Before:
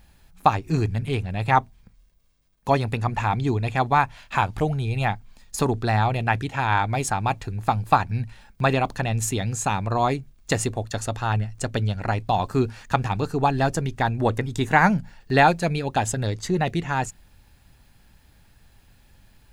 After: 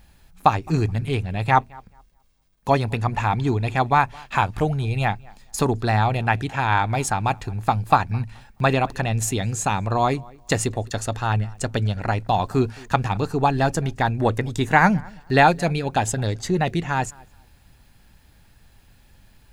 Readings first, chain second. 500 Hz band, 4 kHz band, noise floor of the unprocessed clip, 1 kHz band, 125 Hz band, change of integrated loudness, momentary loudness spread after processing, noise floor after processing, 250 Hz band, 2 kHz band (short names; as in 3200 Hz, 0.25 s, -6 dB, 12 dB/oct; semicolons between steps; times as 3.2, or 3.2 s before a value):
+1.5 dB, +1.5 dB, -58 dBFS, +1.5 dB, +1.5 dB, +1.5 dB, 6 LU, -55 dBFS, +1.5 dB, +1.5 dB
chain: tape echo 0.214 s, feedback 24%, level -23.5 dB, low-pass 2100 Hz; gain +1.5 dB